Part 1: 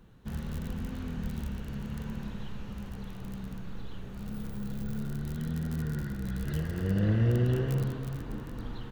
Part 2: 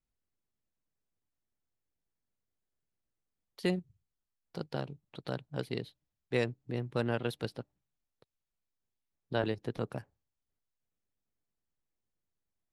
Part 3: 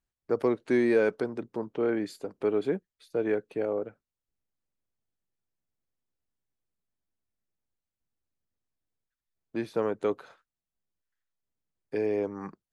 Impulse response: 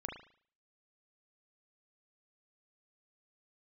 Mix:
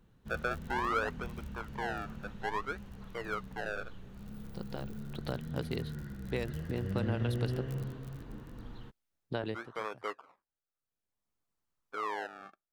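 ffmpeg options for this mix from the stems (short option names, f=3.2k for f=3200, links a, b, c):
-filter_complex "[0:a]volume=-8dB[a];[1:a]acompressor=threshold=-33dB:ratio=6,volume=2dB[b];[2:a]acrusher=samples=30:mix=1:aa=0.000001:lfo=1:lforange=30:lforate=0.58,bandpass=f=1.2k:t=q:w=2.5:csg=0,volume=2dB,asplit=2[c][d];[d]apad=whole_len=561365[e];[b][e]sidechaincompress=threshold=-51dB:ratio=8:attack=11:release=939[f];[a][f][c]amix=inputs=3:normalize=0"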